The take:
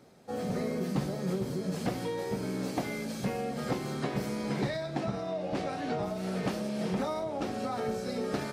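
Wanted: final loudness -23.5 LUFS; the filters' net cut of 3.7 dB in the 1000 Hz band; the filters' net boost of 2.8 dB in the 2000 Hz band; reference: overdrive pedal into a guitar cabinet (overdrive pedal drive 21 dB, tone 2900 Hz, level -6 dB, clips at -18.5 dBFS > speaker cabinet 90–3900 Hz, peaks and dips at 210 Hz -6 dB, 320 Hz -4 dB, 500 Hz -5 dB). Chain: bell 1000 Hz -6 dB; bell 2000 Hz +5 dB; overdrive pedal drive 21 dB, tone 2900 Hz, level -6 dB, clips at -18.5 dBFS; speaker cabinet 90–3900 Hz, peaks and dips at 210 Hz -6 dB, 320 Hz -4 dB, 500 Hz -5 dB; gain +6.5 dB

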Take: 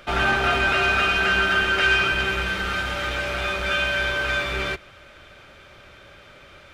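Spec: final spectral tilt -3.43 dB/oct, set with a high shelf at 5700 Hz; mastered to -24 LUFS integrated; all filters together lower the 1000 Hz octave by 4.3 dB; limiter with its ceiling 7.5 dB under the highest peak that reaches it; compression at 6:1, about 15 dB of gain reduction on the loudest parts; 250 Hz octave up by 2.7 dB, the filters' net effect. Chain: bell 250 Hz +4.5 dB; bell 1000 Hz -7 dB; high shelf 5700 Hz +5 dB; compressor 6:1, threshold -35 dBFS; gain +15 dB; limiter -16.5 dBFS

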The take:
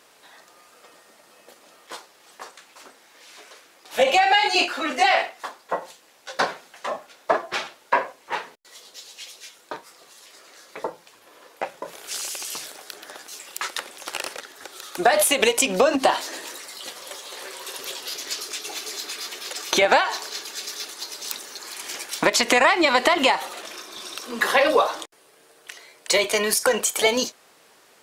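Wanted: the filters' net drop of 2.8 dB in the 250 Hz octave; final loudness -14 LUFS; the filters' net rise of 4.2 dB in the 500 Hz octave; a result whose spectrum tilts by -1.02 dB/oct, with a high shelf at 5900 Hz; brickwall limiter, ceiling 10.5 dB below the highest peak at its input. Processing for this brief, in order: bell 250 Hz -7 dB; bell 500 Hz +6.5 dB; high shelf 5900 Hz -6 dB; gain +12 dB; limiter -0.5 dBFS

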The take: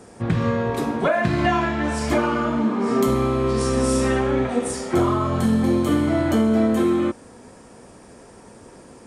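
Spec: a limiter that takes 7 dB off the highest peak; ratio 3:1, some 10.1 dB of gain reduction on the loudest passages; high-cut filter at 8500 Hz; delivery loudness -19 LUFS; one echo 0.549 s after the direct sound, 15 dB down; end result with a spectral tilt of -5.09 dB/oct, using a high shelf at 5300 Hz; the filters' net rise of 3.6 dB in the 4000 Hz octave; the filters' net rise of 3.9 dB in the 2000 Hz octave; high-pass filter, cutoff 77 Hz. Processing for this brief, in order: HPF 77 Hz; LPF 8500 Hz; bell 2000 Hz +4.5 dB; bell 4000 Hz +6.5 dB; high shelf 5300 Hz -7.5 dB; compressor 3:1, threshold -29 dBFS; limiter -23 dBFS; echo 0.549 s -15 dB; gain +12.5 dB

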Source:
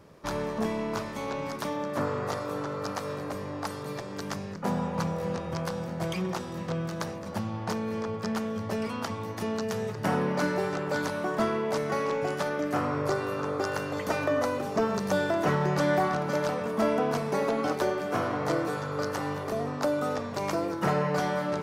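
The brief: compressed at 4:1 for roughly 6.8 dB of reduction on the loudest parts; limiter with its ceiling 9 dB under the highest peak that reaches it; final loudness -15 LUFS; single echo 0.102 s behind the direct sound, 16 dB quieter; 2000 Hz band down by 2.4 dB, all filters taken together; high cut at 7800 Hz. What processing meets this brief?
LPF 7800 Hz; bell 2000 Hz -3.5 dB; compressor 4:1, threshold -30 dBFS; limiter -28 dBFS; echo 0.102 s -16 dB; gain +21.5 dB

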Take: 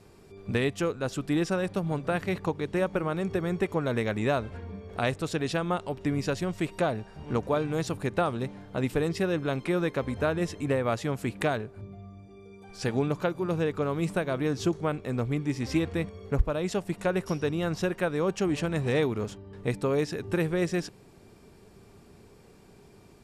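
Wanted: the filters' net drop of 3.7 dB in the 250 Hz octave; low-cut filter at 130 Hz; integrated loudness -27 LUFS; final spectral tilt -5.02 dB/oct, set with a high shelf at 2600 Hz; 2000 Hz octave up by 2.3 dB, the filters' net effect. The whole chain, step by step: HPF 130 Hz; bell 250 Hz -5 dB; bell 2000 Hz +5 dB; high shelf 2600 Hz -4.5 dB; gain +4 dB

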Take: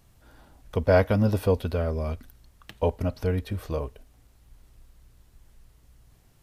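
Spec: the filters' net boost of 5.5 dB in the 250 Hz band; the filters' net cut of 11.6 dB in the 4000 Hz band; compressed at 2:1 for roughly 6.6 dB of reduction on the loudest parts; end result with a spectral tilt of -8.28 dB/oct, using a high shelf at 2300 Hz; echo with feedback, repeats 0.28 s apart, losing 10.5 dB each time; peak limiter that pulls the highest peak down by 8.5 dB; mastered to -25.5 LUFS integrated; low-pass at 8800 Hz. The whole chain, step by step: LPF 8800 Hz; bell 250 Hz +7 dB; high shelf 2300 Hz -7.5 dB; bell 4000 Hz -8.5 dB; compressor 2:1, threshold -26 dBFS; limiter -21 dBFS; feedback echo 0.28 s, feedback 30%, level -10.5 dB; gain +7 dB

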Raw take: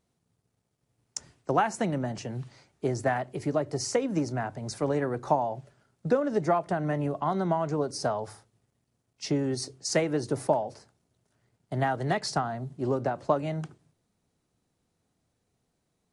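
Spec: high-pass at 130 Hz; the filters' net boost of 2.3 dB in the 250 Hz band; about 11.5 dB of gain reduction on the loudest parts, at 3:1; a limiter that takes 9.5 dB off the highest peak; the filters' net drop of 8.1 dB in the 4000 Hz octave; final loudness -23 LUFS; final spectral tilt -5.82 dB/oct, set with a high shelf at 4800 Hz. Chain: HPF 130 Hz; bell 250 Hz +3.5 dB; bell 4000 Hz -7.5 dB; high shelf 4800 Hz -6 dB; compressor 3:1, threshold -35 dBFS; gain +17 dB; limiter -12.5 dBFS

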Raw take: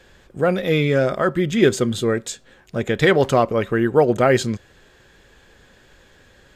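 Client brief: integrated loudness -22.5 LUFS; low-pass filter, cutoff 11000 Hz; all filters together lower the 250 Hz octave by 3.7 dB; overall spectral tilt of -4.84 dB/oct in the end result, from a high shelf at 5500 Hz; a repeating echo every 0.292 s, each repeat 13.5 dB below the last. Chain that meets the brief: LPF 11000 Hz; bell 250 Hz -5.5 dB; high shelf 5500 Hz -5.5 dB; feedback echo 0.292 s, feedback 21%, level -13.5 dB; gain -2 dB

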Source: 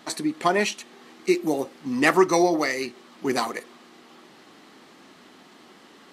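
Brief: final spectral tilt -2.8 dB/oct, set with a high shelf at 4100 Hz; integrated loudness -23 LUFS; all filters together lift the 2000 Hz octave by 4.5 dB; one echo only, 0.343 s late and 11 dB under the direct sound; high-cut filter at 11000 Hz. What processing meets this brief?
LPF 11000 Hz; bell 2000 Hz +6.5 dB; high shelf 4100 Hz -7 dB; echo 0.343 s -11 dB; gain -0.5 dB

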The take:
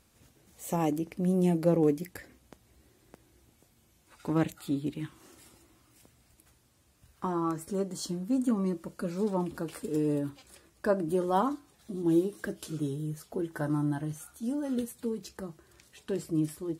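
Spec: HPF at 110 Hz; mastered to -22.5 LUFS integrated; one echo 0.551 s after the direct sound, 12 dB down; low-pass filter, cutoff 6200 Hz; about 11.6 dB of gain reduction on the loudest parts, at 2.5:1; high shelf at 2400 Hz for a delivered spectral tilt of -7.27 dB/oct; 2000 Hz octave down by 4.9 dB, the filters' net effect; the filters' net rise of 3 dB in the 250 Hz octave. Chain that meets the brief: HPF 110 Hz; LPF 6200 Hz; bell 250 Hz +4.5 dB; bell 2000 Hz -9 dB; high shelf 2400 Hz +4 dB; compressor 2.5:1, threshold -37 dBFS; echo 0.551 s -12 dB; gain +16 dB

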